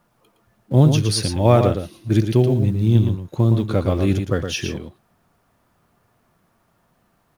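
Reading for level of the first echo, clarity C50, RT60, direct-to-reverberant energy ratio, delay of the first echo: −7.0 dB, no reverb audible, no reverb audible, no reverb audible, 114 ms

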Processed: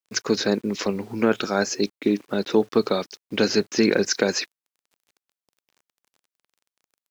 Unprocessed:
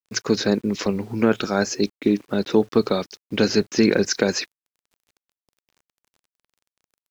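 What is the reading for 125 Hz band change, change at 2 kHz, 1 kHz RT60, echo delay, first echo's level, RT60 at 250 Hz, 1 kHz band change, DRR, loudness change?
−4.5 dB, 0.0 dB, no reverb audible, no echo audible, no echo audible, no reverb audible, 0.0 dB, no reverb audible, −1.5 dB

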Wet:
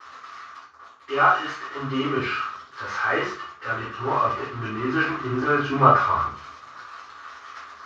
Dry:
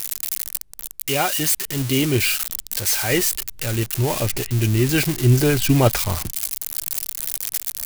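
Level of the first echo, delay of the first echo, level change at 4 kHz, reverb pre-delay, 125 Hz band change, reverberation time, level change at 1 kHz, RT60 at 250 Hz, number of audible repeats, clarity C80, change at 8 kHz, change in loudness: no echo audible, no echo audible, −11.5 dB, 3 ms, −12.0 dB, 0.45 s, +9.0 dB, 0.40 s, no echo audible, 9.0 dB, below −25 dB, −3.0 dB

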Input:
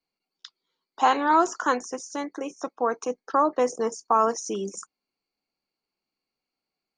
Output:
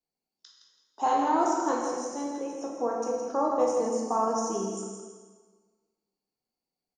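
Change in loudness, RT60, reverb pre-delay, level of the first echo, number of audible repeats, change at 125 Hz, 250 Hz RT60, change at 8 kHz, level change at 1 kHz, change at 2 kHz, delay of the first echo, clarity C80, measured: −3.0 dB, 1.5 s, 11 ms, −7.5 dB, 1, can't be measured, 1.4 s, −1.5 dB, −4.0 dB, −11.0 dB, 165 ms, 2.0 dB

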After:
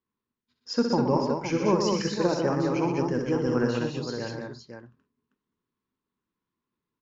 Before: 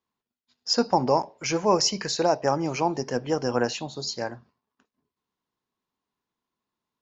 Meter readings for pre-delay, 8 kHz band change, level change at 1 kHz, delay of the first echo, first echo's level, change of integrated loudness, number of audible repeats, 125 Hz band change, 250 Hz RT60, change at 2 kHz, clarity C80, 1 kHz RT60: no reverb audible, can't be measured, −5.0 dB, 63 ms, −7.0 dB, −1.0 dB, 5, +4.0 dB, no reverb audible, −1.5 dB, no reverb audible, no reverb audible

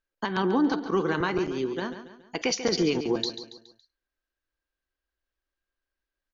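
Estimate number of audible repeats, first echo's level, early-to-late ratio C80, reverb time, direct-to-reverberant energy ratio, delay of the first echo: 4, −11.0 dB, no reverb audible, no reverb audible, no reverb audible, 140 ms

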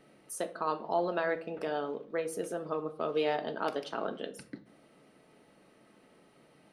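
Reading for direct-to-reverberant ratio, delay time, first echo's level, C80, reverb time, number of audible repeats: 7.0 dB, no echo audible, no echo audible, 20.0 dB, 0.55 s, no echo audible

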